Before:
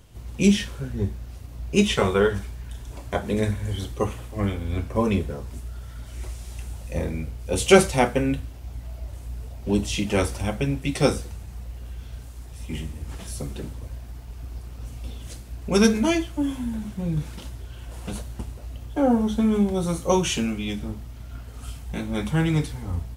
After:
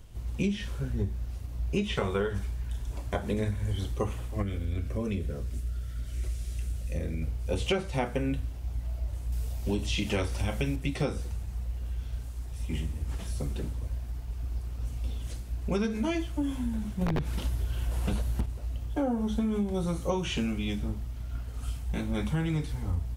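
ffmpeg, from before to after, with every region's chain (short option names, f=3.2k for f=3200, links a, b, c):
-filter_complex "[0:a]asettb=1/sr,asplit=3[a][b][c];[a]atrim=end=4.424[d];[b]atrim=start=4.42:end=7.22,asetpts=PTS-STARTPTS,afade=t=in:d=0.004:c=qsin,afade=t=out:st=2.796:d=0.004:c=qsin,equalizer=f=900:w=2.8:g=-14.5,acompressor=threshold=-29dB:ratio=2:attack=3.2:release=140:knee=1:detection=peak[e];[c]atrim=start=7.216[f];[d][e]acrossfade=d=0.004:c1=hsin:c2=qsin[g];[g][f]acrossfade=d=0.004:c1=qsin:c2=hsin,asettb=1/sr,asplit=3[h][i][j];[h]atrim=end=9.324[k];[i]atrim=start=9.32:end=10.76,asetpts=PTS-STARTPTS,afade=t=in:d=0.004:c=qsin,afade=t=out:st=1.436:d=0.004:c=qsin,highshelf=f=2.9k:g=10.5,asplit=2[l][m];[m]adelay=32,volume=-12dB[n];[l][n]amix=inputs=2:normalize=0,atrim=end_sample=63504[o];[j]atrim=start=10.756[p];[k][o]acrossfade=d=0.004:c1=hsin:c2=qsin[q];[q][p]acrossfade=d=0.004:c1=qsin:c2=hsin,asettb=1/sr,asplit=3[r][s][t];[r]atrim=end=17.014[u];[s]atrim=start=17.01:end=18.46,asetpts=PTS-STARTPTS,afade=t=in:d=0.004:c=qsin,afade=t=out:st=1.446:d=0.004:c=qsin,equalizer=f=12k:w=1.7:g=5.5,acontrast=65,aeval=exprs='(mod(4.22*val(0)+1,2)-1)/4.22':c=same[v];[t]atrim=start=18.456[w];[u][v]acrossfade=d=0.004:c1=hsin:c2=qsin[x];[x][w]acrossfade=d=0.004:c1=qsin:c2=hsin,acrossover=split=4300[y][z];[z]acompressor=threshold=-42dB:ratio=4:attack=1:release=60[aa];[y][aa]amix=inputs=2:normalize=0,lowshelf=f=64:g=11,acompressor=threshold=-21dB:ratio=12,volume=-3.5dB"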